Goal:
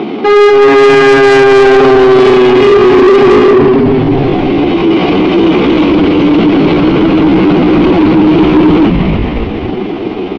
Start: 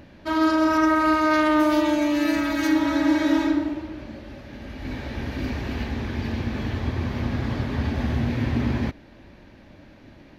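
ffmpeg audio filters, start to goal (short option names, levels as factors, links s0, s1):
-filter_complex "[0:a]highpass=f=150:w=0.5412,highpass=f=150:w=1.3066,equalizer=f=150:t=q:w=4:g=5,equalizer=f=420:t=q:w=4:g=-3,equalizer=f=1400:t=q:w=4:g=-7,lowpass=f=2700:w=0.5412,lowpass=f=2700:w=1.3066,asplit=6[s0][s1][s2][s3][s4][s5];[s1]adelay=272,afreqshift=-100,volume=0.335[s6];[s2]adelay=544,afreqshift=-200,volume=0.151[s7];[s3]adelay=816,afreqshift=-300,volume=0.0676[s8];[s4]adelay=1088,afreqshift=-400,volume=0.0305[s9];[s5]adelay=1360,afreqshift=-500,volume=0.0138[s10];[s0][s6][s7][s8][s9][s10]amix=inputs=6:normalize=0,acontrast=67,equalizer=f=260:t=o:w=1.2:g=6.5,aresample=16000,asoftclip=type=tanh:threshold=0.188,aresample=44100,asetrate=57191,aresample=44100,atempo=0.771105,alimiter=level_in=14.1:limit=0.891:release=50:level=0:latency=1,volume=0.891"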